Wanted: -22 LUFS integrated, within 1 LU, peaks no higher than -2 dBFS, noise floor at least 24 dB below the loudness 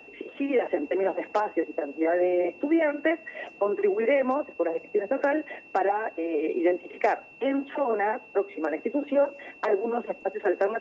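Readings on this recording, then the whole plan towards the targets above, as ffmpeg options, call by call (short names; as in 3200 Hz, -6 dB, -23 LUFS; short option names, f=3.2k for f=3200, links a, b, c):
steady tone 2700 Hz; tone level -48 dBFS; loudness -27.0 LUFS; peak -10.5 dBFS; loudness target -22.0 LUFS
-> -af "bandreject=f=2.7k:w=30"
-af "volume=5dB"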